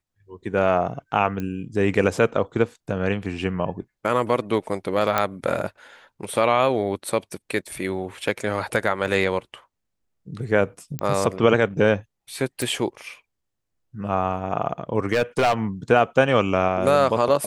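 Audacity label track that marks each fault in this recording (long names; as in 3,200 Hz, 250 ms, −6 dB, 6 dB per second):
1.400000	1.400000	click −17 dBFS
5.180000	5.180000	click −6 dBFS
10.990000	10.990000	click −12 dBFS
12.620000	12.620000	click
15.130000	15.540000	clipping −14.5 dBFS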